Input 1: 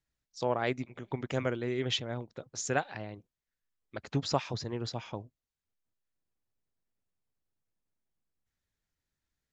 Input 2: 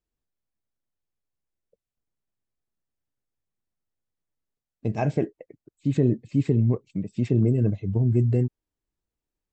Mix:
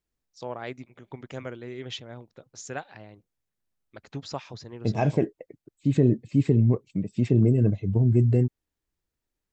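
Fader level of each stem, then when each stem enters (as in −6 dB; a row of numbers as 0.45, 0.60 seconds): −5.0, +1.0 decibels; 0.00, 0.00 seconds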